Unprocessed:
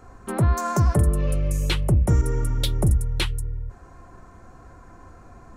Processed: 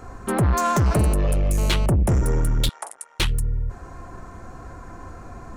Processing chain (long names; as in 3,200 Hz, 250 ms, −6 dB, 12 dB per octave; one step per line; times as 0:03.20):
soft clipping −23 dBFS, distortion −8 dB
0:00.86–0:01.86: phone interference −41 dBFS
0:02.69–0:03.20: elliptic band-pass filter 800–9,600 Hz, stop band 70 dB
level +7.5 dB